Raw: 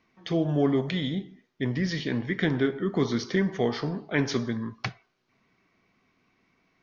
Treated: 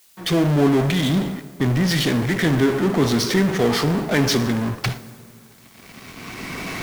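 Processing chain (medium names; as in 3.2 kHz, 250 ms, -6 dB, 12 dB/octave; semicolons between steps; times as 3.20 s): recorder AGC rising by 13 dB/s; peaking EQ 120 Hz +2.5 dB 0.95 oct; in parallel at -12 dB: fuzz box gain 47 dB, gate -54 dBFS; on the sum: word length cut 8-bit, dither triangular; on a send at -14 dB: reverberation RT60 4.7 s, pre-delay 3 ms; on the sum: three bands expanded up and down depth 40%; trim +1.5 dB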